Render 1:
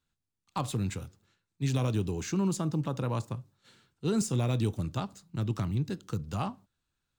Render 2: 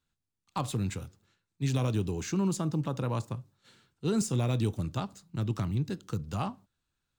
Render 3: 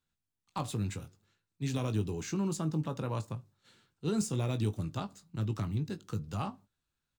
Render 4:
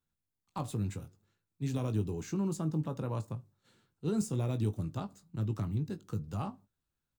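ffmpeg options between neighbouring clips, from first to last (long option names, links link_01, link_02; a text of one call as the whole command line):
ffmpeg -i in.wav -af anull out.wav
ffmpeg -i in.wav -filter_complex "[0:a]asplit=2[link_01][link_02];[link_02]adelay=19,volume=-9.5dB[link_03];[link_01][link_03]amix=inputs=2:normalize=0,volume=-3.5dB" out.wav
ffmpeg -i in.wav -af "equalizer=frequency=3400:width=0.38:gain=-7" out.wav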